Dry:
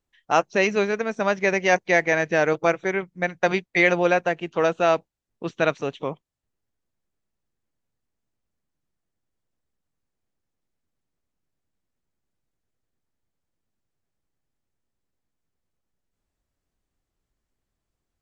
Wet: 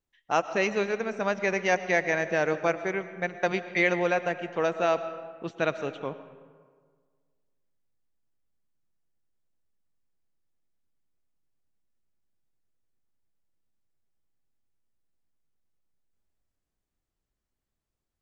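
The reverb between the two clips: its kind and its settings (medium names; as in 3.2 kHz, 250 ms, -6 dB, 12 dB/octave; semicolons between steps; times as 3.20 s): algorithmic reverb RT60 1.7 s, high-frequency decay 0.55×, pre-delay 70 ms, DRR 12 dB; trim -5.5 dB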